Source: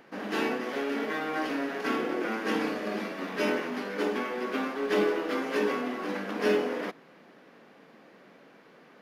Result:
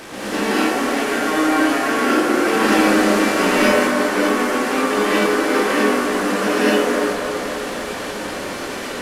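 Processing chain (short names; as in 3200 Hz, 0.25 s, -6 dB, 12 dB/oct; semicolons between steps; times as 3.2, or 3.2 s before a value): delta modulation 64 kbps, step -35 dBFS; 2.47–3.67 sample leveller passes 1; on a send: band-limited delay 0.271 s, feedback 71%, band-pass 890 Hz, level -5 dB; on the sum: non-linear reverb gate 0.27 s rising, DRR -7.5 dB; gain +4 dB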